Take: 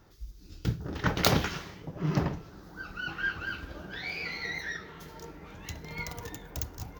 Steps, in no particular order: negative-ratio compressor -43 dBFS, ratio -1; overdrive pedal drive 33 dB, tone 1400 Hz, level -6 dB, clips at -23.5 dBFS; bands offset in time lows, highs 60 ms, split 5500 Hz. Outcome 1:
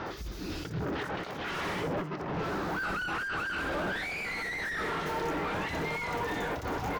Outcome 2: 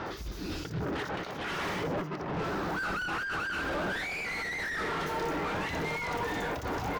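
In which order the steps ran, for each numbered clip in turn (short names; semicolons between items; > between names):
negative-ratio compressor > overdrive pedal > bands offset in time; negative-ratio compressor > bands offset in time > overdrive pedal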